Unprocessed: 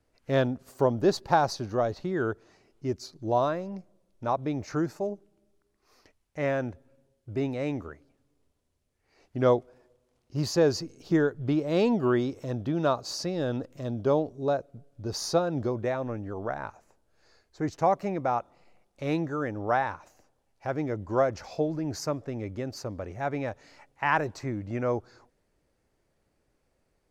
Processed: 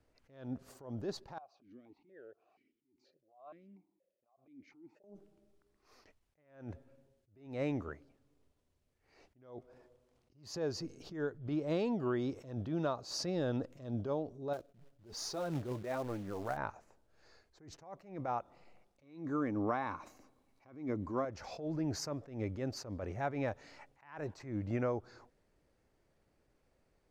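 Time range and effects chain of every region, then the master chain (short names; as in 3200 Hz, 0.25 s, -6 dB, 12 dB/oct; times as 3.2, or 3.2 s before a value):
1.38–5.04 compressor 3:1, threshold -41 dBFS + vowel sequencer 4.2 Hz
14.53–16.57 flange 1.3 Hz, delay 1.9 ms, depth 6 ms, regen +38% + short-mantissa float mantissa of 2-bit
19.03–21.25 high shelf 10000 Hz +8 dB + small resonant body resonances 260/1100/2200/3900 Hz, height 11 dB, ringing for 25 ms
whole clip: high shelf 7300 Hz -7 dB; compressor 12:1, threshold -29 dBFS; attack slew limiter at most 120 dB/s; gain -1 dB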